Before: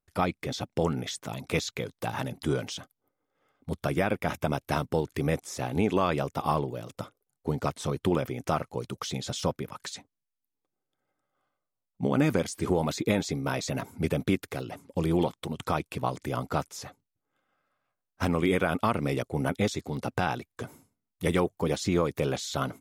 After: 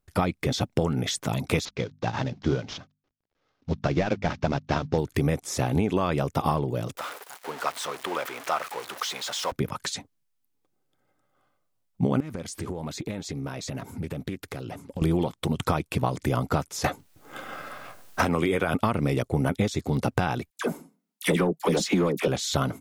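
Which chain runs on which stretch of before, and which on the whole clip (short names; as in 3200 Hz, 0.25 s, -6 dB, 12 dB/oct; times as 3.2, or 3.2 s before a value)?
1.65–4.98 CVSD 32 kbps + notches 50/100/150/200/250 Hz + upward expander, over -46 dBFS
6.97–9.52 zero-crossing step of -32 dBFS + HPF 970 Hz + high shelf 2900 Hz -9.5 dB
12.2–15.02 compressor 4:1, threshold -41 dBFS + Doppler distortion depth 0.16 ms
16.84–18.74 tone controls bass -6 dB, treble 0 dB + doubler 13 ms -13 dB + three-band squash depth 100%
20.5–22.28 steep high-pass 160 Hz 72 dB/oct + sample leveller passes 1 + dispersion lows, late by 54 ms, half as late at 1300 Hz
whole clip: low shelf 220 Hz +5.5 dB; compressor, threshold -27 dBFS; gain +7 dB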